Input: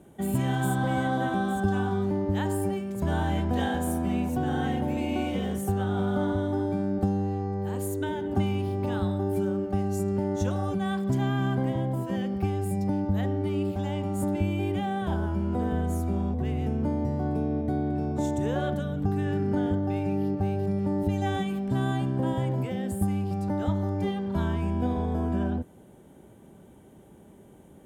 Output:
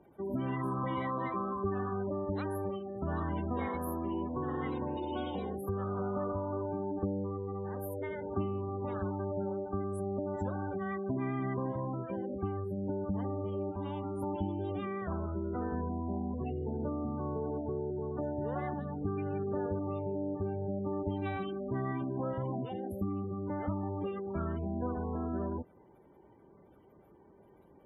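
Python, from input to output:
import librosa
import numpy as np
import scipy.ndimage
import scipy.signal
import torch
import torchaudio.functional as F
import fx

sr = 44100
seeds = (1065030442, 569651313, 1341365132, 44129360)

y = fx.spec_gate(x, sr, threshold_db=-30, keep='strong')
y = fx.formant_shift(y, sr, semitones=5)
y = y * librosa.db_to_amplitude(-8.0)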